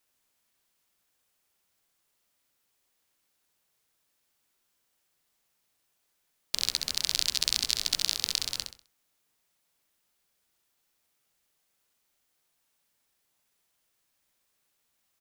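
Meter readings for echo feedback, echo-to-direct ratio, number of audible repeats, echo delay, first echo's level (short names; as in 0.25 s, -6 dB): 31%, -5.5 dB, 3, 65 ms, -6.0 dB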